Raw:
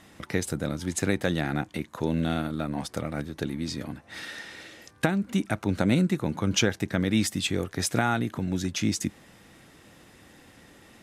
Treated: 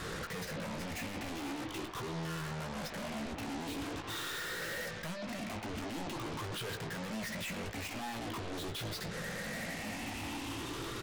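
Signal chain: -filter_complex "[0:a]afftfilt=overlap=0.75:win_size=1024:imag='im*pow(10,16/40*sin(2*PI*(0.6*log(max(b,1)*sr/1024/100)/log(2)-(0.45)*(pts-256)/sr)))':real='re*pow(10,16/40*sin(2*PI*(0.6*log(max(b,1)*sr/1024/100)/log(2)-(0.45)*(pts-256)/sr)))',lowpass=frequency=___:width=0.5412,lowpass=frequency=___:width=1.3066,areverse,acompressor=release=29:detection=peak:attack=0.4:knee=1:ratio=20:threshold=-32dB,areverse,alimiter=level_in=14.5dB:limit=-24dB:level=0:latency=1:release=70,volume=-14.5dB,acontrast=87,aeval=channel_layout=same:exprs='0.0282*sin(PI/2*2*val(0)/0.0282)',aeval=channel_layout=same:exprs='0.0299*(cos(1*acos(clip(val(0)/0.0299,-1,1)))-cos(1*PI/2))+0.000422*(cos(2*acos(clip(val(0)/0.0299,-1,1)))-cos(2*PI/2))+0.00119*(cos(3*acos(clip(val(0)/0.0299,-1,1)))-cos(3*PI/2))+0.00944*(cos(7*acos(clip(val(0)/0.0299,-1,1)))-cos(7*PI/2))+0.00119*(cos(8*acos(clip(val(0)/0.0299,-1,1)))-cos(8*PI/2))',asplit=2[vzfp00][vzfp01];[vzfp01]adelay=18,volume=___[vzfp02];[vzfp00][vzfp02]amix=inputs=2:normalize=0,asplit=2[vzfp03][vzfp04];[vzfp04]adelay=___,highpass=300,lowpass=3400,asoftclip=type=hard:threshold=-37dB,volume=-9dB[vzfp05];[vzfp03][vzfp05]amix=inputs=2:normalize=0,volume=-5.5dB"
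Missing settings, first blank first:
3400, 3400, -7.5dB, 120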